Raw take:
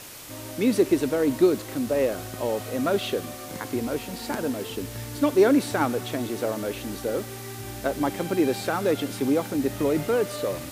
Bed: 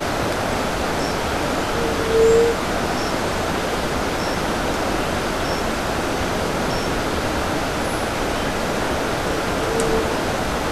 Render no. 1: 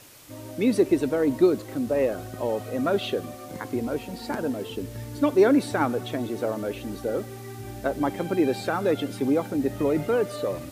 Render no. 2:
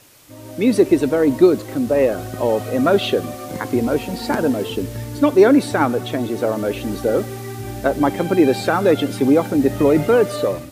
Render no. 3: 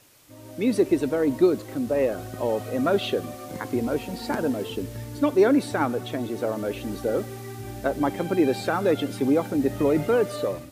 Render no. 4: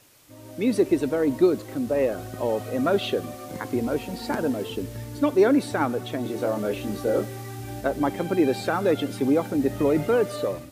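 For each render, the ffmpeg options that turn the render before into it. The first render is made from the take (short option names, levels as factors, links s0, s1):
-af "afftdn=nr=8:nf=-38"
-af "dynaudnorm=f=360:g=3:m=3.16"
-af "volume=0.447"
-filter_complex "[0:a]asettb=1/sr,asplit=3[s0][s1][s2];[s0]atrim=end=6.234[s3];[s1]atrim=start=6.23:end=7.81,asetpts=PTS-STARTPTS,afade=t=in:d=0.004:c=qsin,afade=t=out:st=1.576:d=0.004:c=qsin,asplit=2[s4][s5];[s5]adelay=24,volume=0.631[s6];[s4][s6]amix=inputs=2:normalize=0,atrim=end_sample=69678[s7];[s2]atrim=start=7.806[s8];[s3][s7]acrossfade=d=0.004:c1=hsin:c2=qsin[s9];[s9][s8]acrossfade=d=0.004:c1=qsin:c2=hsin"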